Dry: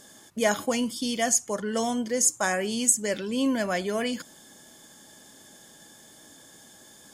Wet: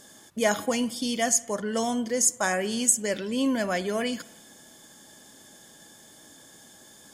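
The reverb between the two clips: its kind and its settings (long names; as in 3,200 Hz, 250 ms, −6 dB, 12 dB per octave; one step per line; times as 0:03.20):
spring reverb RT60 1.2 s, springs 54 ms, chirp 50 ms, DRR 19 dB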